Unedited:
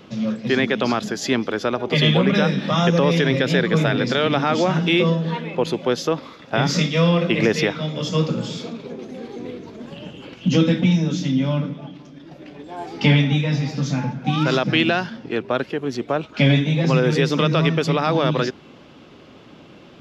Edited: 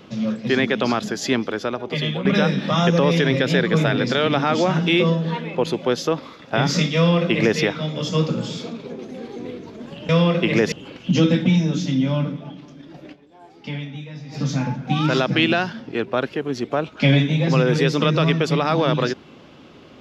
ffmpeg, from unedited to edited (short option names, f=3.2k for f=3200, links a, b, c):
-filter_complex "[0:a]asplit=6[a][b][c][d][e][f];[a]atrim=end=2.25,asetpts=PTS-STARTPTS,afade=t=out:st=1.32:d=0.93:silence=0.281838[g];[b]atrim=start=2.25:end=10.092,asetpts=PTS-STARTPTS,afade=t=in:d=0.004:c=hsin:silence=0.281838[h];[c]atrim=start=6.958:end=7.592[i];[d]atrim=start=10.088:end=12.7,asetpts=PTS-STARTPTS,afade=t=out:st=2.402:d=0.21:c=exp:silence=0.188365[j];[e]atrim=start=12.7:end=13.51,asetpts=PTS-STARTPTS,volume=-14.5dB[k];[f]atrim=start=13.51,asetpts=PTS-STARTPTS,afade=t=in:d=0.21:c=exp:silence=0.188365[l];[g][h]concat=n=2:v=0:a=1[m];[m][i]acrossfade=d=0.004:c1=hsin:c2=hsin[n];[j][k][l]concat=n=3:v=0:a=1[o];[n][o]acrossfade=d=0.004:c1=hsin:c2=hsin"